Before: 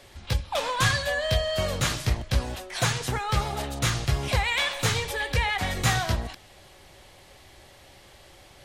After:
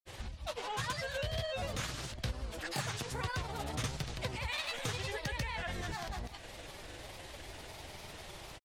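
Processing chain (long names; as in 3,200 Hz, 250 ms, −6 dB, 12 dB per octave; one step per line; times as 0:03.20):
pitch vibrato 0.37 Hz 13 cents
downward compressor 5 to 1, threshold −40 dBFS, peak gain reduction 19.5 dB
granular cloud 100 ms, grains 20 per second, pitch spread up and down by 3 semitones
level +4.5 dB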